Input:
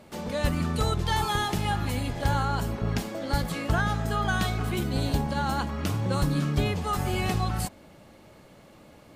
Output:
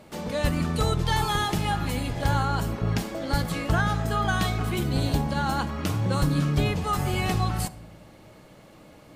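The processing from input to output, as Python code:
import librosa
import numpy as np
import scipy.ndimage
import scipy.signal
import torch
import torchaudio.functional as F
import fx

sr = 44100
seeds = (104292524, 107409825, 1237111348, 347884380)

y = fx.room_shoebox(x, sr, seeds[0], volume_m3=2800.0, walls='furnished', distance_m=0.55)
y = F.gain(torch.from_numpy(y), 1.5).numpy()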